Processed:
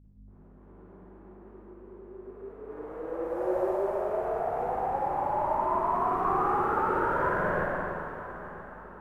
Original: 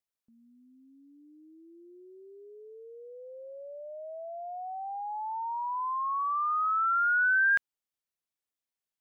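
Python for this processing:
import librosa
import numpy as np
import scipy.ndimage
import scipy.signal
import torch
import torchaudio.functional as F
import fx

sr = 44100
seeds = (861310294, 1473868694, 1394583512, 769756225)

p1 = fx.spec_flatten(x, sr, power=0.43)
p2 = scipy.signal.sosfilt(scipy.signal.butter(4, 1200.0, 'lowpass', fs=sr, output='sos'), p1)
p3 = fx.peak_eq(p2, sr, hz=540.0, db=12.5, octaves=0.26)
p4 = fx.hum_notches(p3, sr, base_hz=60, count=7)
p5 = fx.rider(p4, sr, range_db=4, speed_s=0.5)
p6 = p4 + (p5 * 10.0 ** (-1.5 / 20.0))
p7 = fx.quant_float(p6, sr, bits=8)
p8 = fx.pitch_keep_formants(p7, sr, semitones=-6.5)
p9 = fx.add_hum(p8, sr, base_hz=50, snr_db=15)
p10 = p9 + fx.echo_feedback(p9, sr, ms=976, feedback_pct=47, wet_db=-16.5, dry=0)
p11 = fx.rev_schroeder(p10, sr, rt60_s=2.8, comb_ms=38, drr_db=-10.0)
y = p11 * 10.0 ** (-8.5 / 20.0)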